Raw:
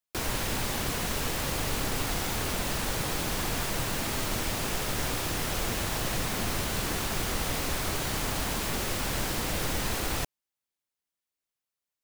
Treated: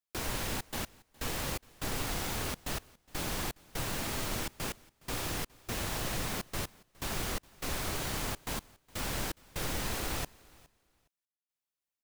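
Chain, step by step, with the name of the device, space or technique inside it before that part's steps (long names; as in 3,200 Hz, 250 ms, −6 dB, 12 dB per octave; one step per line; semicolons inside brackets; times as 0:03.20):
trance gate with a delay (gate pattern "xxxxx.x...xxx..x" 124 BPM −60 dB; repeating echo 414 ms, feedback 19%, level −24 dB)
level −4.5 dB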